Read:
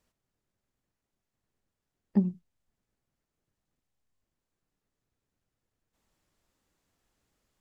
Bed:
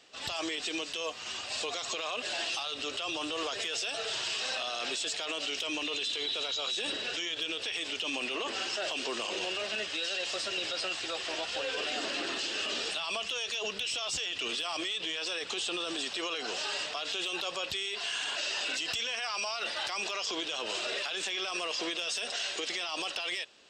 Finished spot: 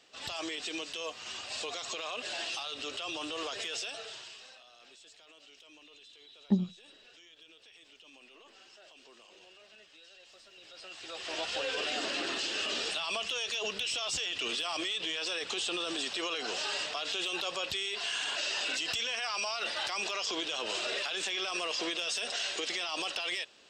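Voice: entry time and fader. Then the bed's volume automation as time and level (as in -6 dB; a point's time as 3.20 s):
4.35 s, -2.0 dB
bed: 3.80 s -3 dB
4.64 s -22.5 dB
10.52 s -22.5 dB
11.41 s 0 dB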